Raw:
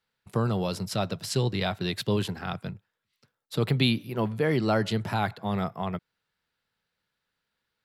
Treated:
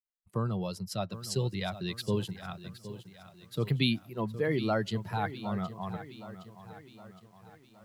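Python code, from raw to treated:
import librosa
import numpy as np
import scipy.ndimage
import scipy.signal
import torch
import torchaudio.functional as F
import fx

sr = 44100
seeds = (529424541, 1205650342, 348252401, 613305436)

y = fx.bin_expand(x, sr, power=1.5)
y = fx.echo_crushed(y, sr, ms=765, feedback_pct=55, bits=9, wet_db=-13.5)
y = y * 10.0 ** (-2.5 / 20.0)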